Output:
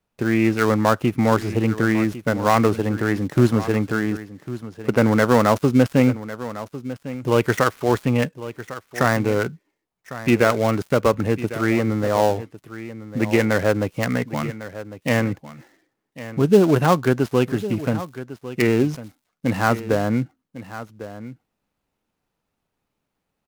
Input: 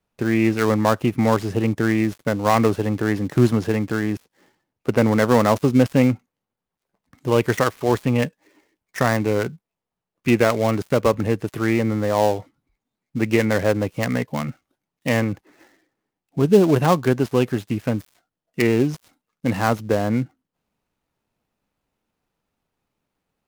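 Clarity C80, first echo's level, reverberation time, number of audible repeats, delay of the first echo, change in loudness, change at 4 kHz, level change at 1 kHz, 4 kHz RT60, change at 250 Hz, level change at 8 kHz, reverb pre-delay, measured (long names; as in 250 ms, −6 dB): no reverb audible, −14.5 dB, no reverb audible, 1, 1,102 ms, 0.0 dB, 0.0 dB, +1.0 dB, no reverb audible, 0.0 dB, 0.0 dB, no reverb audible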